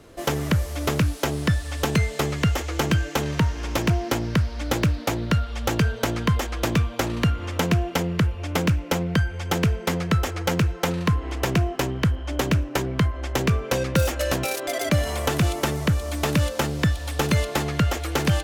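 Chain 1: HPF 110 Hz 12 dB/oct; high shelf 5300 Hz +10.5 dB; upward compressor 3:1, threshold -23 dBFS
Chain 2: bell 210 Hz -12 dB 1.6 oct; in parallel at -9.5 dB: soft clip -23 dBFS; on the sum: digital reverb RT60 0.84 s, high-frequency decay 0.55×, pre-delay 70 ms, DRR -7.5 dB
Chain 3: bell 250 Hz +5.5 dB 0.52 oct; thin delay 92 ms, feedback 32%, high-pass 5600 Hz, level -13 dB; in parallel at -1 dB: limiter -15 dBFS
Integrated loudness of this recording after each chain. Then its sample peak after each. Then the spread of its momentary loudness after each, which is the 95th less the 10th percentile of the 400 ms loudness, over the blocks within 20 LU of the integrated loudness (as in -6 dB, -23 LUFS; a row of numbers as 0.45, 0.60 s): -24.0, -18.5, -19.0 LUFS; -4.5, -4.5, -5.0 dBFS; 3, 3, 2 LU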